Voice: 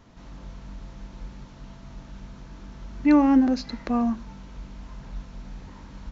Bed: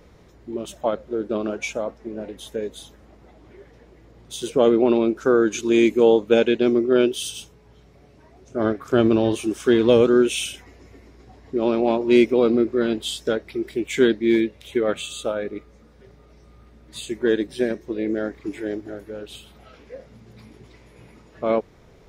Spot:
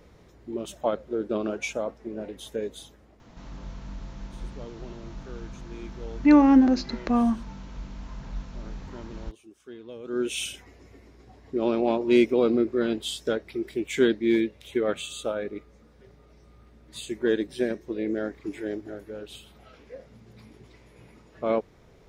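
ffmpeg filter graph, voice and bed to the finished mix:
ffmpeg -i stem1.wav -i stem2.wav -filter_complex "[0:a]adelay=3200,volume=1.5dB[link_01];[1:a]volume=19.5dB,afade=type=out:start_time=2.74:duration=0.95:silence=0.0668344,afade=type=in:start_time=10.03:duration=0.4:silence=0.0749894[link_02];[link_01][link_02]amix=inputs=2:normalize=0" out.wav

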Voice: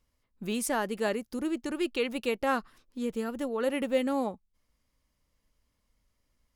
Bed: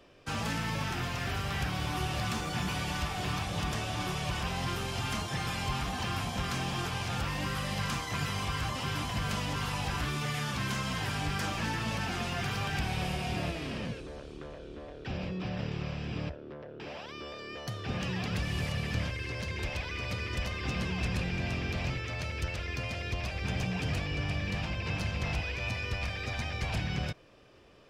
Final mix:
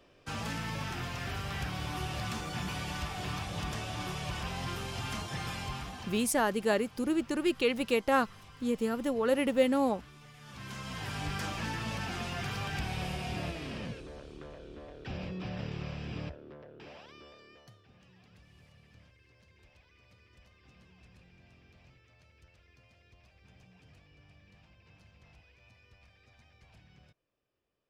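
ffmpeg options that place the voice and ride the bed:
ffmpeg -i stem1.wav -i stem2.wav -filter_complex "[0:a]adelay=5650,volume=1.5dB[link_01];[1:a]volume=14dB,afade=type=out:start_time=5.5:duration=0.85:silence=0.141254,afade=type=in:start_time=10.39:duration=0.88:silence=0.133352,afade=type=out:start_time=16.12:duration=1.76:silence=0.0630957[link_02];[link_01][link_02]amix=inputs=2:normalize=0" out.wav

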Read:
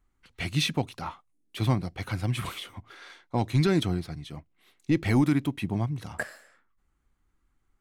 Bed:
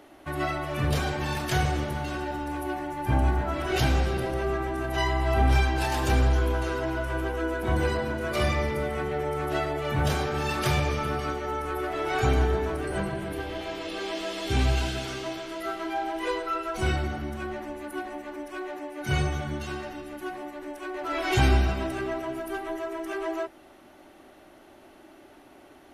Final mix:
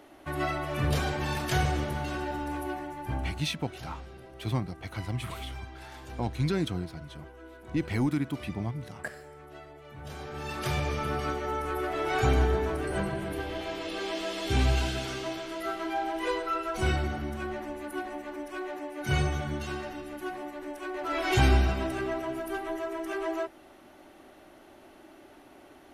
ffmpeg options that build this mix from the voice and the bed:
ffmpeg -i stem1.wav -i stem2.wav -filter_complex "[0:a]adelay=2850,volume=-5dB[link_01];[1:a]volume=17dB,afade=type=out:start_time=2.51:duration=0.96:silence=0.125893,afade=type=in:start_time=10.02:duration=1.25:silence=0.11885[link_02];[link_01][link_02]amix=inputs=2:normalize=0" out.wav

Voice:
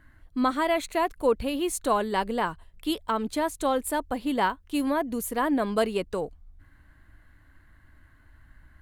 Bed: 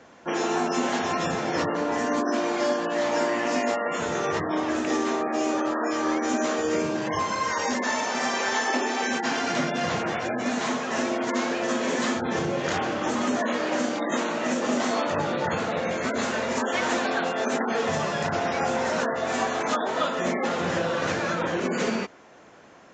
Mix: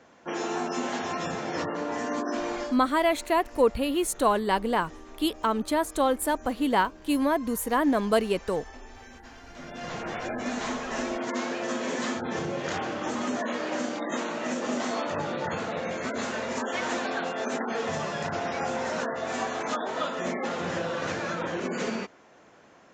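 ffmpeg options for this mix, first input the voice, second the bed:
ffmpeg -i stem1.wav -i stem2.wav -filter_complex "[0:a]adelay=2350,volume=1.5dB[link_01];[1:a]volume=13dB,afade=type=out:start_time=2.54:duration=0.23:silence=0.133352,afade=type=in:start_time=9.53:duration=0.72:silence=0.125893[link_02];[link_01][link_02]amix=inputs=2:normalize=0" out.wav

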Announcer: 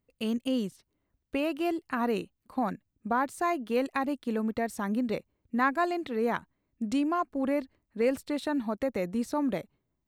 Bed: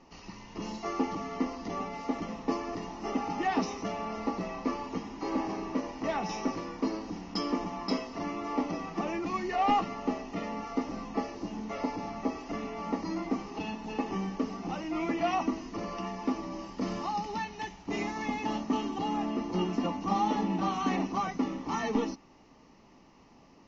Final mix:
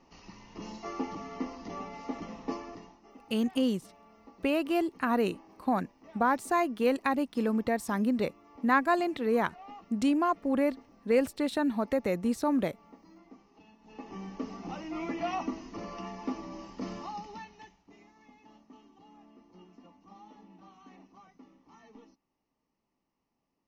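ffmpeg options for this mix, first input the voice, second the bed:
ffmpeg -i stem1.wav -i stem2.wav -filter_complex "[0:a]adelay=3100,volume=1.5dB[link_01];[1:a]volume=13.5dB,afade=type=out:start_time=2.51:duration=0.51:silence=0.133352,afade=type=in:start_time=13.79:duration=0.75:silence=0.125893,afade=type=out:start_time=16.75:duration=1.2:silence=0.0891251[link_02];[link_01][link_02]amix=inputs=2:normalize=0" out.wav

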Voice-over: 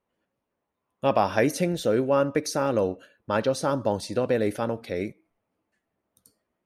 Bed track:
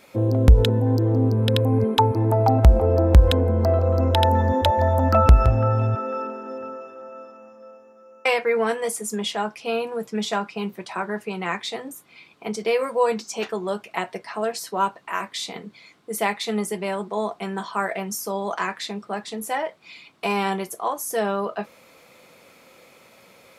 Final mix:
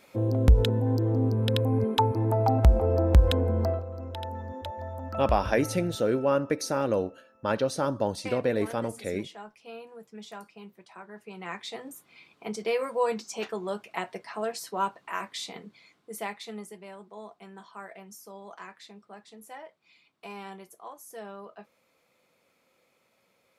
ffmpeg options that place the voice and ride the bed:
ffmpeg -i stem1.wav -i stem2.wav -filter_complex "[0:a]adelay=4150,volume=-2.5dB[link_01];[1:a]volume=6.5dB,afade=type=out:start_time=3.62:duration=0.23:silence=0.237137,afade=type=in:start_time=11.11:duration=0.85:silence=0.251189,afade=type=out:start_time=15.34:duration=1.45:silence=0.251189[link_02];[link_01][link_02]amix=inputs=2:normalize=0" out.wav

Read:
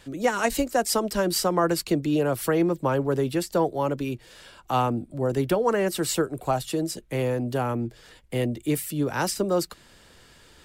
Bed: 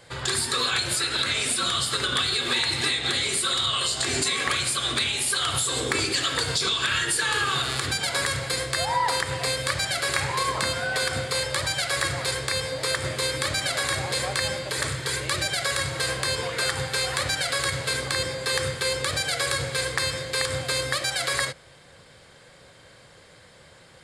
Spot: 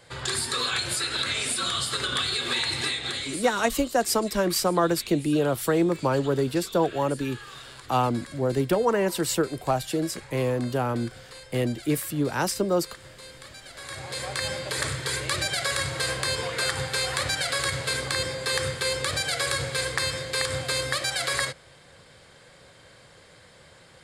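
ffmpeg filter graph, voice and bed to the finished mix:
ffmpeg -i stem1.wav -i stem2.wav -filter_complex "[0:a]adelay=3200,volume=0dB[link_01];[1:a]volume=15.5dB,afade=type=out:start_time=2.77:duration=0.93:silence=0.149624,afade=type=in:start_time=13.73:duration=0.95:silence=0.125893[link_02];[link_01][link_02]amix=inputs=2:normalize=0" out.wav

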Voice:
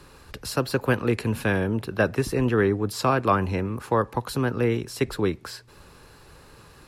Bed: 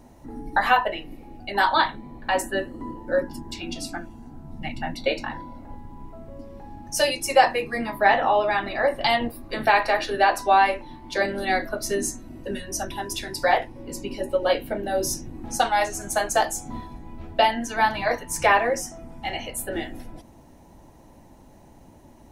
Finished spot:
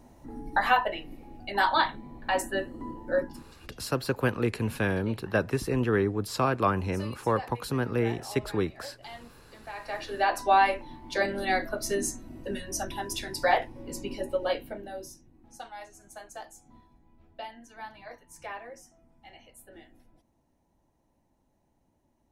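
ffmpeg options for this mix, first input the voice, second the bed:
ffmpeg -i stem1.wav -i stem2.wav -filter_complex "[0:a]adelay=3350,volume=-4dB[link_01];[1:a]volume=15.5dB,afade=type=out:start_time=3.22:duration=0.3:silence=0.112202,afade=type=in:start_time=9.74:duration=0.77:silence=0.105925,afade=type=out:start_time=14.09:duration=1.04:silence=0.125893[link_02];[link_01][link_02]amix=inputs=2:normalize=0" out.wav

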